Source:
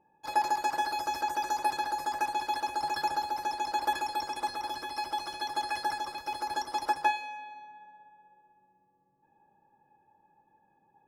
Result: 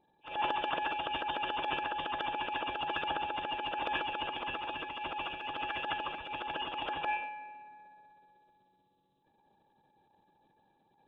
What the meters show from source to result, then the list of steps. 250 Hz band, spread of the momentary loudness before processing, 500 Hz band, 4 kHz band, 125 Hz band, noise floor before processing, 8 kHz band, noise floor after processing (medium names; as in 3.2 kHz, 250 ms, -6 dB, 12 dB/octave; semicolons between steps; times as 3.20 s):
-0.5 dB, 7 LU, +1.0 dB, +0.5 dB, no reading, -70 dBFS, under -30 dB, -72 dBFS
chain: knee-point frequency compression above 2.3 kHz 4:1; transient shaper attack -10 dB, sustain +6 dB; harmonic-percussive split harmonic -7 dB; trim +2.5 dB